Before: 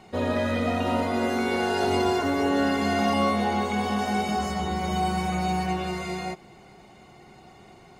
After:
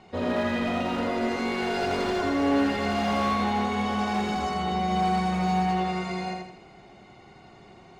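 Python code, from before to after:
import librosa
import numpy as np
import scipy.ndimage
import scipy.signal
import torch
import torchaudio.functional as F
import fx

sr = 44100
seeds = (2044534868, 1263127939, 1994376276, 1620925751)

p1 = scipy.signal.sosfilt(scipy.signal.butter(2, 5800.0, 'lowpass', fs=sr, output='sos'), x)
p2 = np.clip(p1, -10.0 ** (-22.0 / 20.0), 10.0 ** (-22.0 / 20.0))
p3 = p2 + fx.echo_feedback(p2, sr, ms=82, feedback_pct=43, wet_db=-3, dry=0)
y = p3 * librosa.db_to_amplitude(-2.0)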